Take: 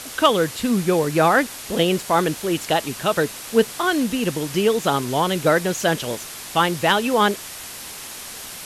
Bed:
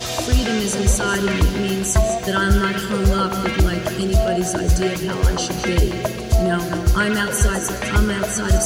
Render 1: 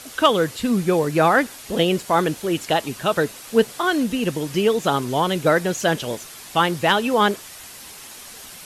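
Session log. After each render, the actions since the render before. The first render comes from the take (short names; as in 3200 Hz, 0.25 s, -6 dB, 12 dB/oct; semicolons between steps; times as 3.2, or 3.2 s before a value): denoiser 6 dB, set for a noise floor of -36 dBFS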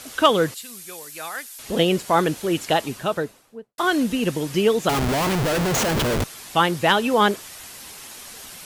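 0.54–1.59 pre-emphasis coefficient 0.97; 2.75–3.78 studio fade out; 4.89–6.24 Schmitt trigger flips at -30 dBFS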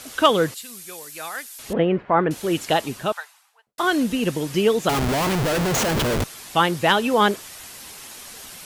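1.73–2.31 LPF 2100 Hz 24 dB/oct; 3.12–3.67 elliptic high-pass 820 Hz, stop band 70 dB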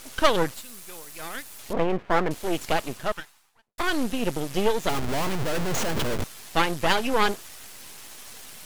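half-wave rectifier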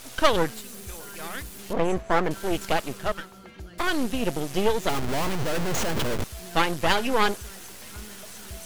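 add bed -25.5 dB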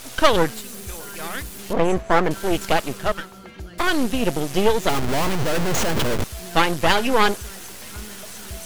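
gain +5 dB; limiter -1 dBFS, peak gain reduction 2 dB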